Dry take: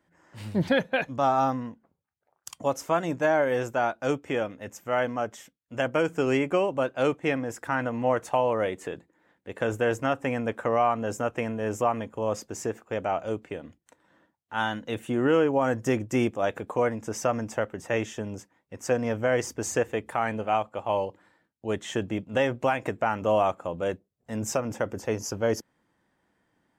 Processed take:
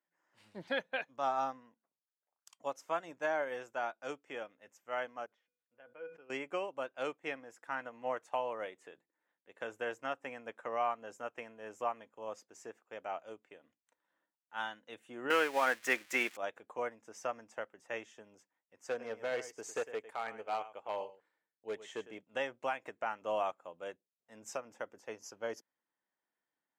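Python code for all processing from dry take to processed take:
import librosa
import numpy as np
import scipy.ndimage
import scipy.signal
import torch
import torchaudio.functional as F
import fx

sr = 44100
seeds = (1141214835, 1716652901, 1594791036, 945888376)

y = fx.chain(x, sr, fx.air_absorb(metres=320.0),
    fx.comb_fb(f0_hz=490.0, decay_s=0.16, harmonics='odd', damping=0.0, mix_pct=80),
    fx.sustainer(db_per_s=74.0), at=(5.26, 6.3))
y = fx.chain(y, sr, fx.crossing_spikes(level_db=-25.0),
    fx.highpass(hz=200.0, slope=12),
    fx.peak_eq(hz=2000.0, db=12.5, octaves=1.6), at=(15.3, 16.37))
y = fx.chain(y, sr, fx.small_body(hz=(440.0, 2200.0), ring_ms=45, db=7),
    fx.echo_single(ms=104, db=-11.0),
    fx.overload_stage(gain_db=17.5), at=(18.89, 22.21))
y = fx.weighting(y, sr, curve='A')
y = fx.upward_expand(y, sr, threshold_db=-42.0, expansion=1.5)
y = y * 10.0 ** (-7.5 / 20.0)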